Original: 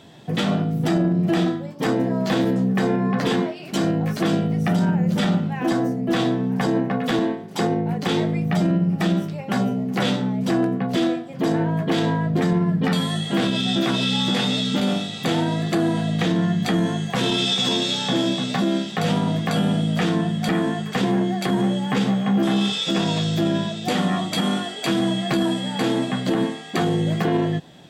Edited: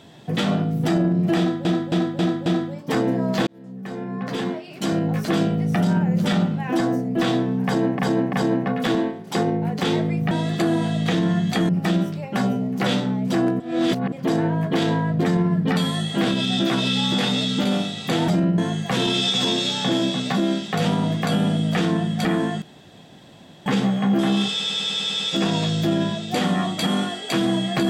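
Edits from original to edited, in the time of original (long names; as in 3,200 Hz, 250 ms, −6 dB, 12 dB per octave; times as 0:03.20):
0:01.38–0:01.65: repeat, 5 plays
0:02.39–0:04.05: fade in
0:06.57–0:06.91: repeat, 3 plays
0:08.55–0:08.85: swap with 0:15.44–0:16.82
0:10.76–0:11.28: reverse
0:20.86–0:21.90: fill with room tone
0:22.74: stutter 0.10 s, 8 plays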